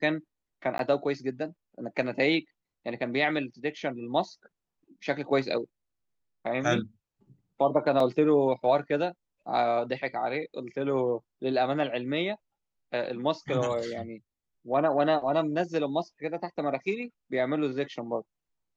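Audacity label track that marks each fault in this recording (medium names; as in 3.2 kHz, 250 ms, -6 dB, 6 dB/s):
0.780000	0.790000	dropout 12 ms
8.000000	8.000000	dropout 2.8 ms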